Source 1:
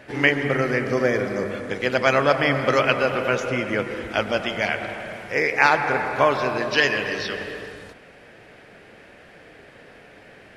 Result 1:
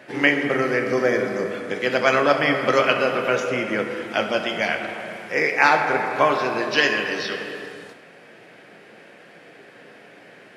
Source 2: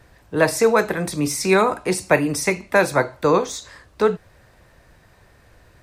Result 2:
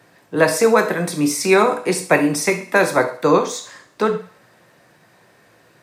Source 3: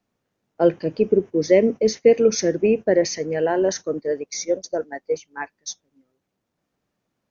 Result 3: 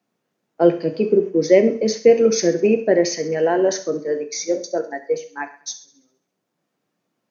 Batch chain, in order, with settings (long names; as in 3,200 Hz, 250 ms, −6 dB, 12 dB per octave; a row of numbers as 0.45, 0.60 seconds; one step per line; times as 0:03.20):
high-pass filter 140 Hz 24 dB per octave
feedback echo with a high-pass in the loop 67 ms, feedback 52%, high-pass 420 Hz, level −16.5 dB
reverb whose tail is shaped and stops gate 150 ms falling, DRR 7 dB
normalise the peak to −1.5 dBFS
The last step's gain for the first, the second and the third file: 0.0, +1.5, +1.5 decibels